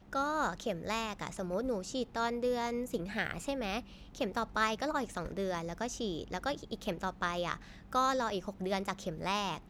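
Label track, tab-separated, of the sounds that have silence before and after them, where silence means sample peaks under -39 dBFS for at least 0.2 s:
4.150000	7.560000	sound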